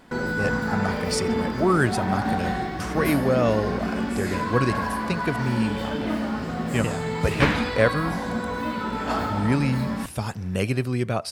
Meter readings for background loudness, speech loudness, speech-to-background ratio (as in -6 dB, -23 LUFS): -27.5 LUFS, -26.5 LUFS, 1.0 dB